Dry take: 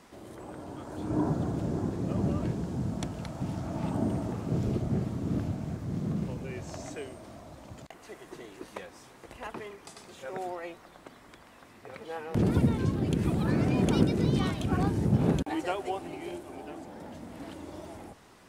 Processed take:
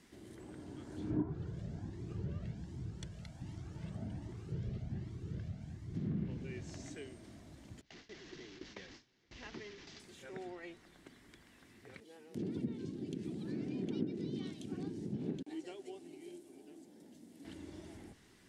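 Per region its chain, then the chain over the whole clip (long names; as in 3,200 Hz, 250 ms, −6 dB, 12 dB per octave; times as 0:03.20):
0:01.22–0:05.95: parametric band 260 Hz −8 dB 0.66 octaves + flanger whose copies keep moving one way rising 1.3 Hz
0:07.81–0:10.00: linear delta modulator 32 kbit/s, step −40.5 dBFS + noise gate with hold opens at −36 dBFS, closes at −42 dBFS
0:12.00–0:17.45: high-pass filter 280 Hz + parametric band 1,500 Hz −13.5 dB 2.6 octaves
whole clip: notch filter 2,500 Hz, Q 22; treble cut that deepens with the level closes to 1,500 Hz, closed at −25 dBFS; flat-topped bell 810 Hz −10 dB; level −5.5 dB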